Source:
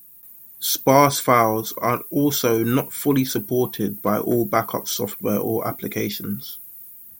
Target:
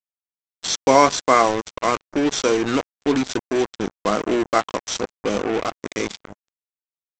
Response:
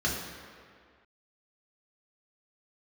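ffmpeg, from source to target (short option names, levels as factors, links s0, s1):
-af "highpass=250,aresample=16000,acrusher=bits=3:mix=0:aa=0.5,aresample=44100,volume=1.12"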